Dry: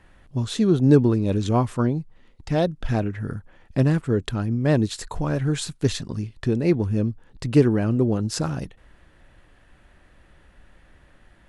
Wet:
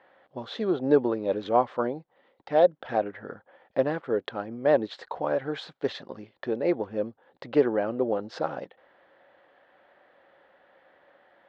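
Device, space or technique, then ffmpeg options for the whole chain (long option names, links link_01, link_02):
phone earpiece: -af "highpass=420,equalizer=frequency=540:width_type=q:width=4:gain=9,equalizer=frequency=780:width_type=q:width=4:gain=6,equalizer=frequency=2600:width_type=q:width=4:gain=-7,lowpass=frequency=3500:width=0.5412,lowpass=frequency=3500:width=1.3066,volume=-1.5dB"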